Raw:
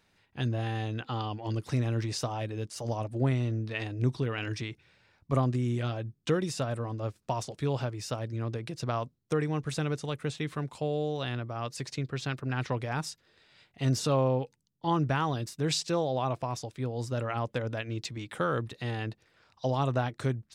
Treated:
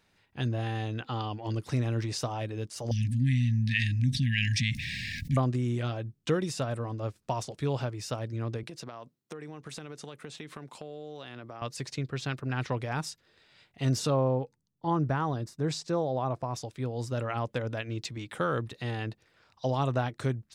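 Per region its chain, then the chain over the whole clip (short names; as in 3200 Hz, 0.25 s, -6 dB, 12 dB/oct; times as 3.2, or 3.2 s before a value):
2.91–5.37 brick-wall FIR band-stop 280–1600 Hz + fast leveller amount 70%
8.63–11.62 HPF 190 Hz + compressor 16:1, threshold -37 dBFS
14.1–16.54 LPF 3800 Hz 6 dB/oct + bell 2800 Hz -9 dB 1 oct
whole clip: dry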